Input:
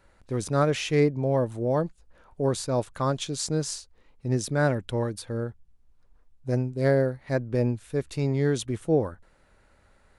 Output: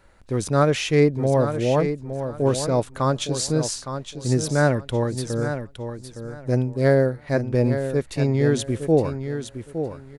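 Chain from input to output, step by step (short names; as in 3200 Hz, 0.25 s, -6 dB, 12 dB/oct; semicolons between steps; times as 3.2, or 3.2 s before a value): feedback echo 0.863 s, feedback 22%, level -9 dB; gain +4.5 dB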